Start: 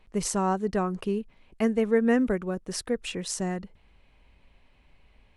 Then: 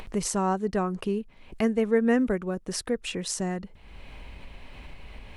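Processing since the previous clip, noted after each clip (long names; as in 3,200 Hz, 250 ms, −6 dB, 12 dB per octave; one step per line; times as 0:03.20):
upward compression, threshold −27 dBFS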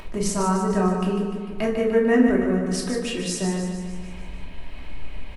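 on a send: repeating echo 149 ms, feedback 57%, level −7 dB
on the sum: rectangular room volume 610 cubic metres, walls furnished, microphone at 2.8 metres
level −1 dB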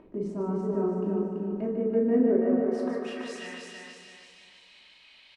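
band-pass filter sweep 310 Hz → 4,000 Hz, 0:02.10–0:03.93
repeating echo 333 ms, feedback 39%, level −3.5 dB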